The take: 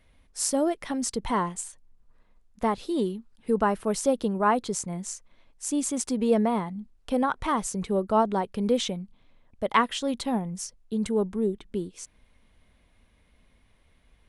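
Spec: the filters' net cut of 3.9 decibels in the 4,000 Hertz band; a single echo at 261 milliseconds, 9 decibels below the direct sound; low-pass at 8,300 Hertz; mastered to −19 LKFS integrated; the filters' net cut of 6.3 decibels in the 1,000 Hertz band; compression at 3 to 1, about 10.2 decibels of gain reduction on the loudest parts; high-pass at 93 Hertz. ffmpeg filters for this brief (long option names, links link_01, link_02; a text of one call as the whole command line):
ffmpeg -i in.wav -af "highpass=93,lowpass=8300,equalizer=frequency=1000:width_type=o:gain=-7.5,equalizer=frequency=4000:width_type=o:gain=-4.5,acompressor=threshold=-33dB:ratio=3,aecho=1:1:261:0.355,volume=17dB" out.wav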